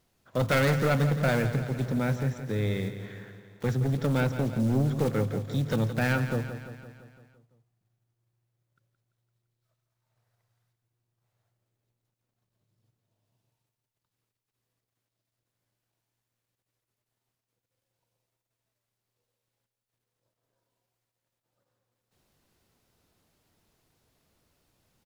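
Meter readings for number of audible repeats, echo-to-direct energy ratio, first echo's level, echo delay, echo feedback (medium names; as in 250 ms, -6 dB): 6, -9.0 dB, -11.0 dB, 170 ms, 59%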